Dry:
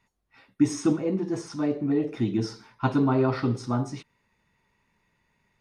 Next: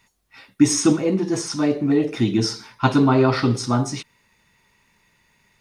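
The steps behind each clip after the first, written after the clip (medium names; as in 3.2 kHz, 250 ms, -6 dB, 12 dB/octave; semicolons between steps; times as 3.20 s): treble shelf 2.4 kHz +10.5 dB; trim +6 dB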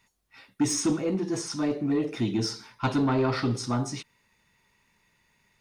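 saturation -11.5 dBFS, distortion -15 dB; trim -6 dB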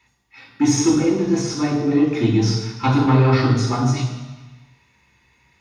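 reverberation RT60 1.3 s, pre-delay 3 ms, DRR -1 dB; trim -1 dB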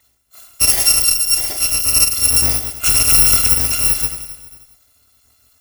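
bit-reversed sample order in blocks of 256 samples; trim +3 dB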